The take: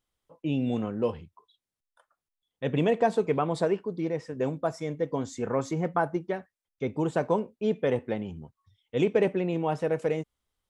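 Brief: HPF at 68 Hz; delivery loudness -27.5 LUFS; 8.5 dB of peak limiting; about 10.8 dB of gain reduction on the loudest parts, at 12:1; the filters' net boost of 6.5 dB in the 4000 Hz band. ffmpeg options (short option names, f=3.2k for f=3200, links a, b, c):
-af "highpass=68,equalizer=f=4k:t=o:g=8.5,acompressor=threshold=-29dB:ratio=12,volume=10dB,alimiter=limit=-15.5dB:level=0:latency=1"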